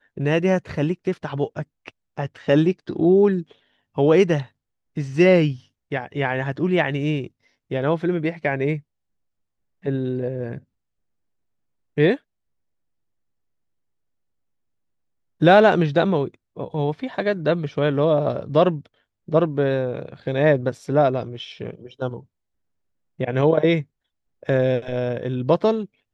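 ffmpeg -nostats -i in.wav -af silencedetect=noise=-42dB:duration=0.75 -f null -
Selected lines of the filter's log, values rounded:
silence_start: 8.80
silence_end: 9.84 | silence_duration: 1.03
silence_start: 10.59
silence_end: 11.97 | silence_duration: 1.38
silence_start: 12.17
silence_end: 15.41 | silence_duration: 3.24
silence_start: 22.23
silence_end: 23.19 | silence_duration: 0.97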